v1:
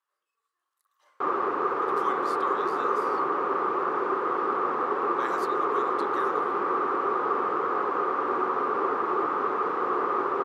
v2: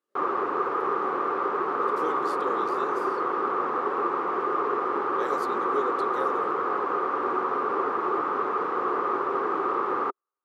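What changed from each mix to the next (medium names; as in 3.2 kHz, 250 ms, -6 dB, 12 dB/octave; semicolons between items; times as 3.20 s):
speech: remove resonant high-pass 1.1 kHz, resonance Q 11; background: entry -1.05 s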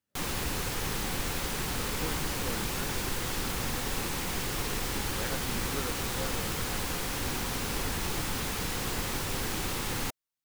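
background: remove resonant low-pass 1.2 kHz, resonance Q 10; master: remove resonant high-pass 390 Hz, resonance Q 4.8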